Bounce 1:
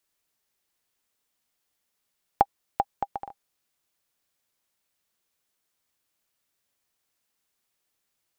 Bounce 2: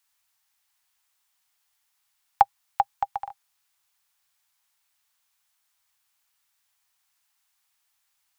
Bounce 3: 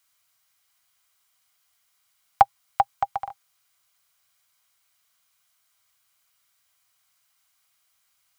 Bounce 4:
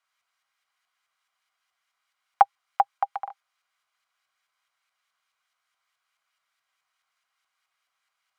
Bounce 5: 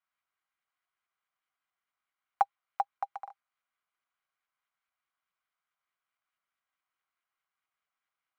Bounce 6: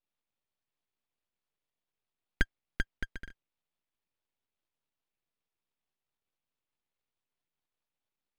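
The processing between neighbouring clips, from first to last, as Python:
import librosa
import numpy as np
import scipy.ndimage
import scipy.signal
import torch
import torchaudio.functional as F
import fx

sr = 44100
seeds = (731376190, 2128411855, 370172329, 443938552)

y1 = fx.curve_eq(x, sr, hz=(120.0, 330.0, 820.0), db=(0, -27, 7))
y1 = y1 * librosa.db_to_amplitude(-2.0)
y2 = fx.low_shelf(y1, sr, hz=450.0, db=4.5)
y2 = fx.notch_comb(y2, sr, f0_hz=890.0)
y2 = y2 * librosa.db_to_amplitude(5.0)
y3 = fx.filter_lfo_bandpass(y2, sr, shape='saw_up', hz=4.7, low_hz=890.0, high_hz=1800.0, q=0.77)
y4 = scipy.signal.medfilt(y3, 9)
y4 = y4 * librosa.db_to_amplitude(-9.0)
y5 = np.abs(y4)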